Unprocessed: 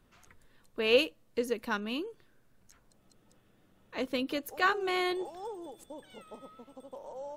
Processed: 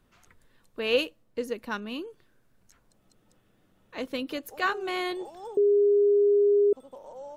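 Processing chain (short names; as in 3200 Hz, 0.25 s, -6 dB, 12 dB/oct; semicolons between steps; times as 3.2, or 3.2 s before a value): 0.9–1.99 mismatched tape noise reduction decoder only; 5.57–6.73 bleep 408 Hz -17.5 dBFS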